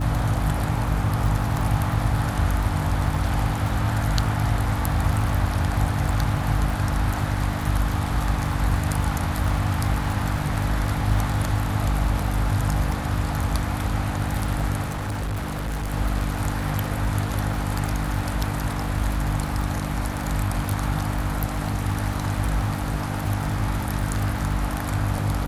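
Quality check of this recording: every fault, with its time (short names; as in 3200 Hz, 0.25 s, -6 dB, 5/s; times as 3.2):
crackle 19/s -26 dBFS
hum 50 Hz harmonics 6 -28 dBFS
14.81–15.94 clipped -24 dBFS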